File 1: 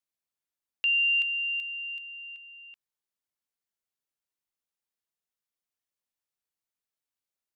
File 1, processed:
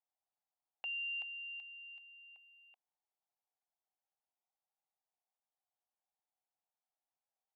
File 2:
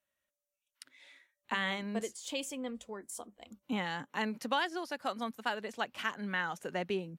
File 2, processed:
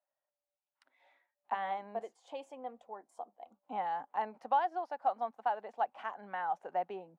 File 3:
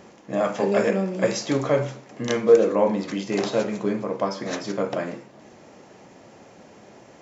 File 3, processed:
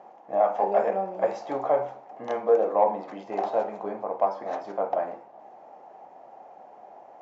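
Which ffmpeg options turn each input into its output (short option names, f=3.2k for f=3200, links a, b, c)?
-filter_complex "[0:a]bandpass=f=770:t=q:w=5.5:csg=0,asplit=2[a][b];[b]asoftclip=type=tanh:threshold=-21.5dB,volume=-5.5dB[c];[a][c]amix=inputs=2:normalize=0,volume=6dB"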